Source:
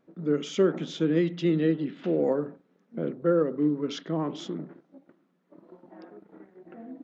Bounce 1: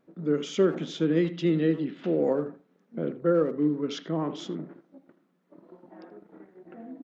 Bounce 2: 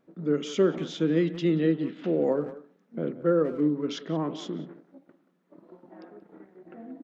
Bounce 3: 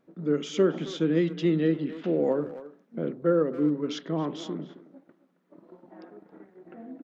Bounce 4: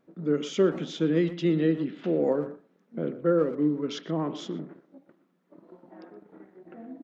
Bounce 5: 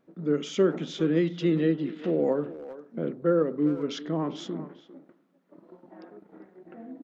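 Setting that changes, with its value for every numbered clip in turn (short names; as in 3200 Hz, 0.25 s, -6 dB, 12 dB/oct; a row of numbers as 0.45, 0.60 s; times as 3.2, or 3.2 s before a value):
speakerphone echo, time: 80, 180, 270, 120, 400 ms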